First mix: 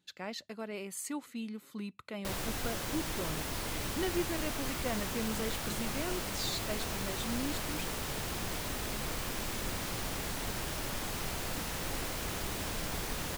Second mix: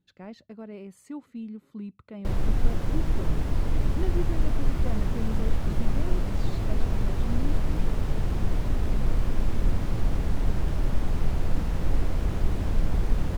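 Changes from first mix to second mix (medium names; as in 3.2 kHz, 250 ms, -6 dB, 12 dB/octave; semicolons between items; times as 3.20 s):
speech -5.5 dB; master: add tilt EQ -4 dB/octave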